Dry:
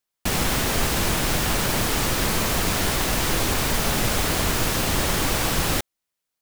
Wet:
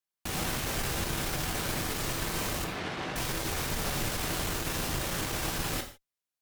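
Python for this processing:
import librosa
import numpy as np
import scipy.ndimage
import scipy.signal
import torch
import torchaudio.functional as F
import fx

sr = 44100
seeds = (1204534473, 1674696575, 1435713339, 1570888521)

y = fx.tube_stage(x, sr, drive_db=16.0, bias=0.55)
y = fx.bandpass_edges(y, sr, low_hz=120.0, high_hz=3200.0, at=(2.64, 3.16))
y = fx.rev_gated(y, sr, seeds[0], gate_ms=180, shape='falling', drr_db=4.0)
y = y * 10.0 ** (-8.0 / 20.0)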